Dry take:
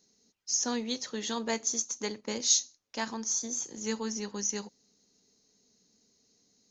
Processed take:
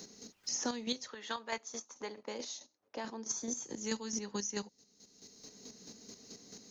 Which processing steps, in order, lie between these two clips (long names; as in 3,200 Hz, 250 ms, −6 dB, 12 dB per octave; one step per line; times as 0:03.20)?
0:01.07–0:03.29: resonant band-pass 1,500 Hz → 420 Hz, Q 1
square-wave tremolo 4.6 Hz, depth 60%, duty 25%
multiband upward and downward compressor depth 70%
level +2 dB